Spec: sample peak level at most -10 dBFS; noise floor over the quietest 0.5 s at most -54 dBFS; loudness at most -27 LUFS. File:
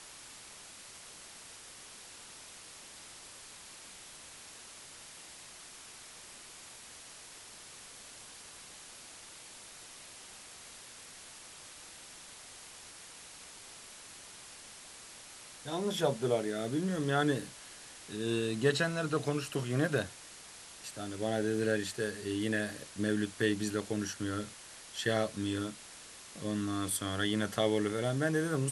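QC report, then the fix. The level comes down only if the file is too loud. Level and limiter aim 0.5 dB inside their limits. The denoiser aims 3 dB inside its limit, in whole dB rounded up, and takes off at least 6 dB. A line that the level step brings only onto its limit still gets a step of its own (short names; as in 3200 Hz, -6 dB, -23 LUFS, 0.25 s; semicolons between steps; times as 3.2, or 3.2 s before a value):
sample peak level -15.0 dBFS: OK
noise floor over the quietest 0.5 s -51 dBFS: fail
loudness -33.5 LUFS: OK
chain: denoiser 6 dB, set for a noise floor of -51 dBFS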